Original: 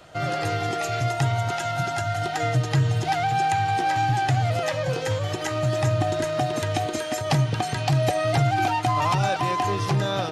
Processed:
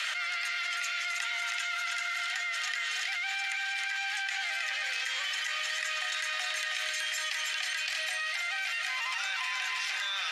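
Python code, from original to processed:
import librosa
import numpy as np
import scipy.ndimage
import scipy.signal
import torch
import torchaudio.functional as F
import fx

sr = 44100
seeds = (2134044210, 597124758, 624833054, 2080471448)

p1 = fx.high_shelf(x, sr, hz=10000.0, db=-7.5)
p2 = 10.0 ** (-28.0 / 20.0) * np.tanh(p1 / 10.0 ** (-28.0 / 20.0))
p3 = p1 + (p2 * librosa.db_to_amplitude(-11.0))
p4 = fx.rotary_switch(p3, sr, hz=8.0, then_hz=1.0, switch_at_s=2.29)
p5 = np.clip(p4, -10.0 ** (-14.0 / 20.0), 10.0 ** (-14.0 / 20.0))
p6 = fx.ladder_highpass(p5, sr, hz=1600.0, resonance_pct=40)
p7 = fx.echo_feedback(p6, sr, ms=318, feedback_pct=58, wet_db=-9.0)
y = fx.env_flatten(p7, sr, amount_pct=100)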